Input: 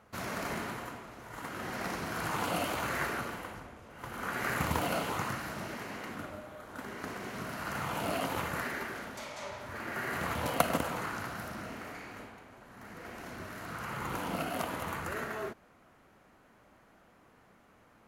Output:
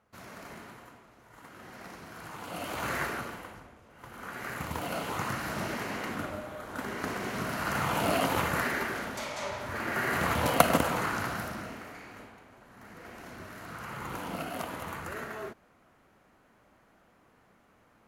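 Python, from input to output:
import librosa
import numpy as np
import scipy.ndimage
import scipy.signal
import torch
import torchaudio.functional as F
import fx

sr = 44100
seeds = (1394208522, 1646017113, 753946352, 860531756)

y = fx.gain(x, sr, db=fx.line((2.42, -9.5), (2.89, 2.0), (3.83, -5.0), (4.69, -5.0), (5.6, 6.0), (11.34, 6.0), (11.88, -1.5)))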